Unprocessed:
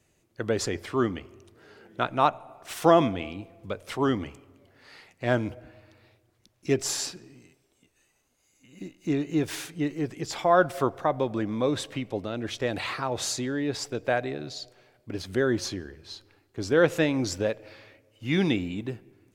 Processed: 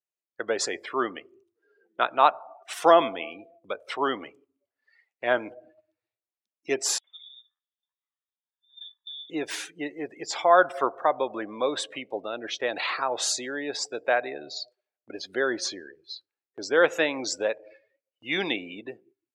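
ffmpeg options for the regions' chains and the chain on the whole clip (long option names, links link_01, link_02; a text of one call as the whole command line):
ffmpeg -i in.wav -filter_complex "[0:a]asettb=1/sr,asplit=3[link_01][link_02][link_03];[link_01]atrim=end=6.984[link_04];[link_02]atrim=start=6.98:end=9.3,asetpts=PTS-STARTPTS,afade=type=in:duration=0.004:curve=qsin,afade=type=out:start_time=2.316:duration=0.004:curve=qsin,acompressor=threshold=-42dB:ratio=8:attack=3.2:release=140:knee=1:detection=peak,acrossover=split=1100[link_05][link_06];[link_06]adelay=60[link_07];[link_05][link_07]amix=inputs=2:normalize=0,atrim=end_sample=102312,lowpass=frequency=3200:width_type=q:width=0.5098,lowpass=frequency=3200:width_type=q:width=0.6013,lowpass=frequency=3200:width_type=q:width=0.9,lowpass=frequency=3200:width_type=q:width=2.563,afreqshift=-3800[link_08];[link_03]atrim=start=9.296[link_09];[link_04][link_08]acrossfade=duration=0.004:curve1=hsin:curve2=qsin[link_10];[link_10][link_09]acrossfade=duration=0.004:curve1=qsin:curve2=hsin,afftdn=noise_reduction=26:noise_floor=-43,agate=range=-8dB:threshold=-53dB:ratio=16:detection=peak,highpass=540,volume=4dB" out.wav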